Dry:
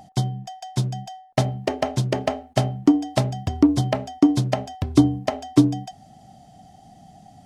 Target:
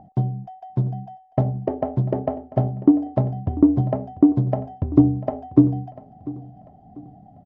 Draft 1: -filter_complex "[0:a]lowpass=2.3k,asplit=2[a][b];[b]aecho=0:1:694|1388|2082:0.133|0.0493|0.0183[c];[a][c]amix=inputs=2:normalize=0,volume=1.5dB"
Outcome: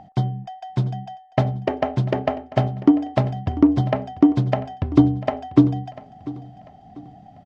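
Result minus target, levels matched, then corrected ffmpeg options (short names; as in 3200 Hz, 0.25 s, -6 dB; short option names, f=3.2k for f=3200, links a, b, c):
2000 Hz band +15.5 dB
-filter_complex "[0:a]lowpass=680,asplit=2[a][b];[b]aecho=0:1:694|1388|2082:0.133|0.0493|0.0183[c];[a][c]amix=inputs=2:normalize=0,volume=1.5dB"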